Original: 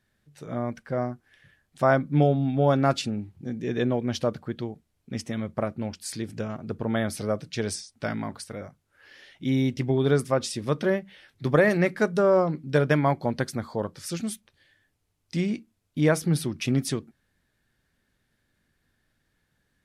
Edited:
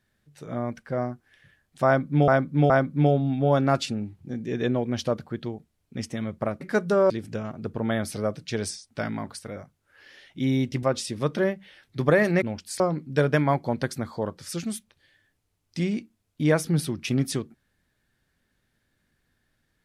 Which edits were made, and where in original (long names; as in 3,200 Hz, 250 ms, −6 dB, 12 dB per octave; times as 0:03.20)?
0:01.86–0:02.28: repeat, 3 plays
0:05.77–0:06.15: swap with 0:11.88–0:12.37
0:09.88–0:10.29: remove